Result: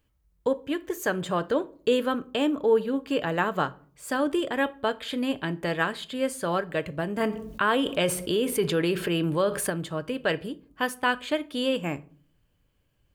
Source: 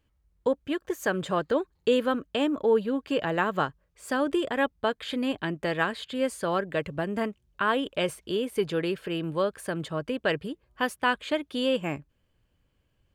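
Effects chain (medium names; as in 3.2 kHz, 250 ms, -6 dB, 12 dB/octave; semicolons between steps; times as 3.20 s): treble shelf 9.7 kHz +8 dB; reverberation RT60 0.45 s, pre-delay 7 ms, DRR 13.5 dB; 7.20–9.70 s: level flattener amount 50%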